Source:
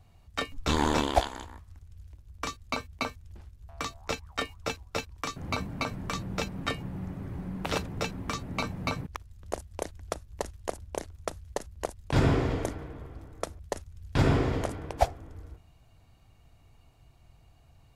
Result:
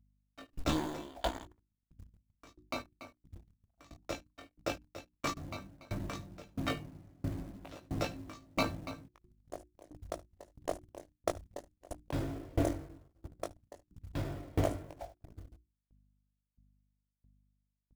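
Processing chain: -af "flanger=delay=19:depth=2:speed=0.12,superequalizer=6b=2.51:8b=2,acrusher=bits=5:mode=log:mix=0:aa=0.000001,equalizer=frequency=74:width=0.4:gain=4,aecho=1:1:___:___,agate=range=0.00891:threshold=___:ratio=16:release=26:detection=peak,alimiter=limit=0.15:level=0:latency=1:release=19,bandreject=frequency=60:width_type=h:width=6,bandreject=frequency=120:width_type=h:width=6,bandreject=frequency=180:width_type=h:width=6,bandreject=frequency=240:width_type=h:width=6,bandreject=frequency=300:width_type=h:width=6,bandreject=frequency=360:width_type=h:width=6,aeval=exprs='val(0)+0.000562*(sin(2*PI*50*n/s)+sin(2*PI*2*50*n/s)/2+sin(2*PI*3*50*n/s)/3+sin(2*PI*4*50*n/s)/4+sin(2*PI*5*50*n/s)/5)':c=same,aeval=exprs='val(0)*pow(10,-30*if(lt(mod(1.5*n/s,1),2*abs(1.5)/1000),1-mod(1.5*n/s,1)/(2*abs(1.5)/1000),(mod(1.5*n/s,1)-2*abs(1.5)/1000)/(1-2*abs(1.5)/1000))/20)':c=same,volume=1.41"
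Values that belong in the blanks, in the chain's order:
73, 0.168, 0.00562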